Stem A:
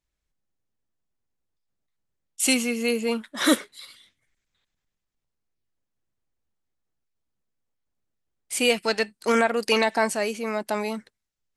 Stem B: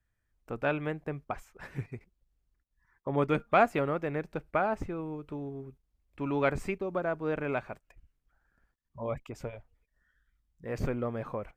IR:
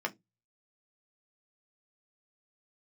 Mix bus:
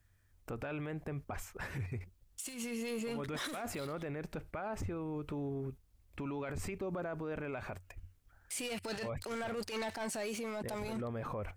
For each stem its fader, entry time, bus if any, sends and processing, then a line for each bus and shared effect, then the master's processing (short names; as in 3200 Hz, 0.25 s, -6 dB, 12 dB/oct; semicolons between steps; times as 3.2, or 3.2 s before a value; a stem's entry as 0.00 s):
+0.5 dB, 0.00 s, no send, sample leveller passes 3; auto duck -6 dB, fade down 0.45 s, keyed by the second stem
+1.5 dB, 0.00 s, no send, high shelf 5000 Hz +5.5 dB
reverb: off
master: bell 91 Hz +14.5 dB 0.26 oct; negative-ratio compressor -26 dBFS, ratio -0.5; limiter -32 dBFS, peak gain reduction 20 dB